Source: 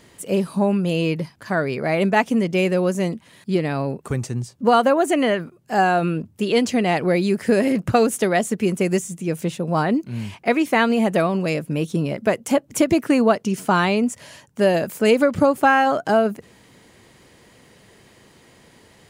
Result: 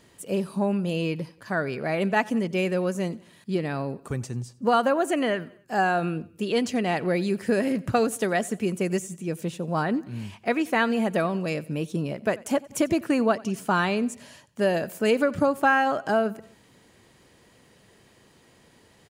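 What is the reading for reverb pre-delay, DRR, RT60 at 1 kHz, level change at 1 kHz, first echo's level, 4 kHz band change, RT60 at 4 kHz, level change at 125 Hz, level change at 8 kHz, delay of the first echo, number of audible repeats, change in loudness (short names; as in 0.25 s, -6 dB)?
none, none, none, -5.5 dB, -22.0 dB, -5.5 dB, none, -6.0 dB, -6.0 dB, 90 ms, 3, -5.5 dB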